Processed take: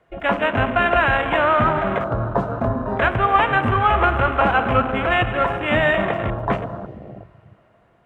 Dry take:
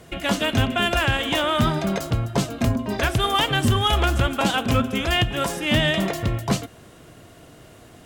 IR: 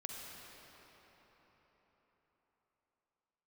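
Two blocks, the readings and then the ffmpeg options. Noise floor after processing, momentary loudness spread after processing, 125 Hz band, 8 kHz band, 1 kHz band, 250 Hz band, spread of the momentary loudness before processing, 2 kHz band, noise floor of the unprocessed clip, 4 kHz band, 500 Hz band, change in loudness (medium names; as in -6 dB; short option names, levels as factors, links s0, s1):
-57 dBFS, 7 LU, -1.5 dB, under -25 dB, +7.0 dB, -1.5 dB, 6 LU, +5.0 dB, -48 dBFS, -8.5 dB, +5.5 dB, +2.5 dB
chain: -filter_complex "[0:a]acrossover=split=480 2400:gain=0.251 1 0.0794[s0][s1][s2];[s0][s1][s2]amix=inputs=3:normalize=0,asplit=2[s3][s4];[1:a]atrim=start_sample=2205,lowshelf=f=210:g=6[s5];[s4][s5]afir=irnorm=-1:irlink=0,volume=0.841[s6];[s3][s6]amix=inputs=2:normalize=0,afwtdn=0.0316,volume=1.58"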